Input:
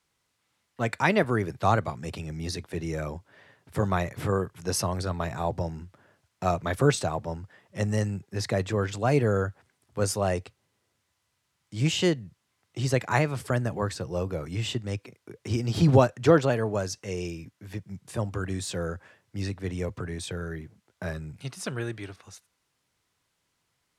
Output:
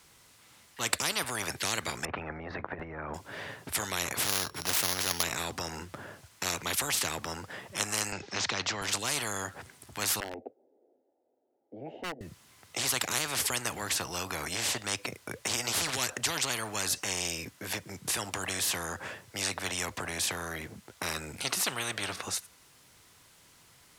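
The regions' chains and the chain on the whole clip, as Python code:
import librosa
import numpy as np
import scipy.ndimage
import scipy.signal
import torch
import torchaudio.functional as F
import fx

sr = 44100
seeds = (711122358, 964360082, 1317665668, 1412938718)

y = fx.chain(x, sr, fx.lowpass(hz=1600.0, slope=24),
    fx.over_compress(threshold_db=-35.0, ratio=-0.5), at=(2.05, 3.14))
y = fx.chain(y, sr, fx.sample_sort(block=8),
    fx.high_shelf(hz=11000.0, db=-11.5), at=(4.23, 5.23))
y = fx.chain(y, sr, fx.steep_lowpass(hz=5900.0, slope=36),
    fx.band_squash(depth_pct=40), at=(8.12, 8.82))
y = fx.chain(y, sr, fx.cheby1_bandpass(low_hz=240.0, high_hz=840.0, order=3),
    fx.fixed_phaser(hz=440.0, stages=4),
    fx.clip_hard(threshold_db=-22.0), at=(10.2, 12.21))
y = fx.high_shelf(y, sr, hz=7400.0, db=6.0)
y = fx.spectral_comp(y, sr, ratio=10.0)
y = y * librosa.db_to_amplitude(-2.0)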